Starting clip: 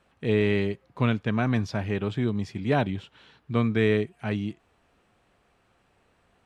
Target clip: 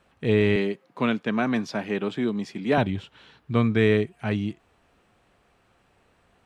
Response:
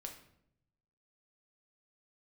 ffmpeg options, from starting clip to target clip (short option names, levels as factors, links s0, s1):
-filter_complex "[0:a]asettb=1/sr,asplit=3[s0][s1][s2];[s0]atrim=end=0.564[s3];[s1]atrim=start=0.56:end=2.78,asetpts=PTS-STARTPTS,afade=t=in:d=0.004:c=qsin,afade=t=out:st=2.216:d=0.004:c=qsin,highpass=f=180:w=0.5412,highpass=f=180:w=1.3066[s4];[s2]atrim=start=2.776[s5];[s3][s4]acrossfade=d=0.004:c1=hsin:c2=qsin[s6];[s6][s5]acrossfade=d=0.004:c1=qsin:c2=hsin,volume=1.33"